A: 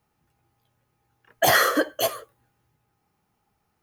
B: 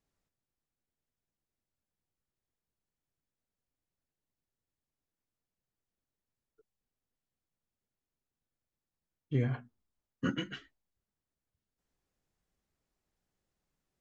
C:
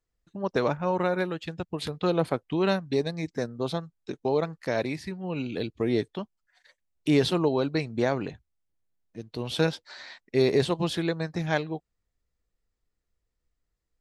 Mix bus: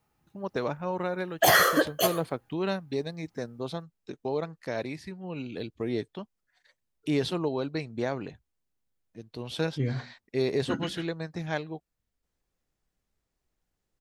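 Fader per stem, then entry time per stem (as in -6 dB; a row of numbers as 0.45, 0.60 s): -1.5, +1.0, -5.0 dB; 0.00, 0.45, 0.00 s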